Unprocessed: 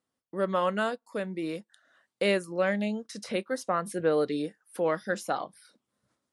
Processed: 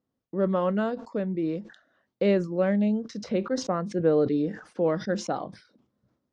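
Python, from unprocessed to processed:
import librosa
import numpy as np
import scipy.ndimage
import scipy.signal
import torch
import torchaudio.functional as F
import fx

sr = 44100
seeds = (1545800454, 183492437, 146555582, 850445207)

y = scipy.signal.sosfilt(scipy.signal.butter(6, 6500.0, 'lowpass', fs=sr, output='sos'), x)
y = fx.tilt_shelf(y, sr, db=8.5, hz=710.0)
y = fx.sustainer(y, sr, db_per_s=130.0)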